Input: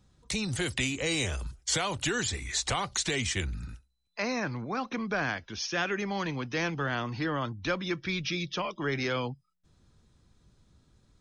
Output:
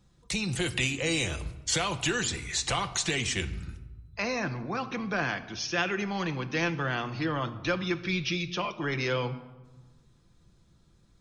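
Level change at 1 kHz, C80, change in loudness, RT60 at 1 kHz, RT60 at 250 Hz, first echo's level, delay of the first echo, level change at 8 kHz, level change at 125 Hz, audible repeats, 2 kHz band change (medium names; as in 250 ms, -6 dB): +1.0 dB, 16.0 dB, +1.0 dB, 1.3 s, 1.7 s, no echo, no echo, +0.5 dB, +1.5 dB, no echo, +1.5 dB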